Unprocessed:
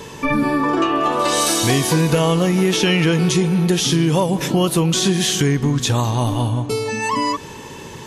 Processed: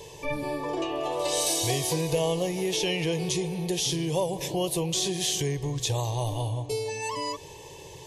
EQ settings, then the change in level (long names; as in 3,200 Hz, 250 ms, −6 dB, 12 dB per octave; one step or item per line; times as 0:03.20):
phaser with its sweep stopped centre 570 Hz, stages 4
−6.5 dB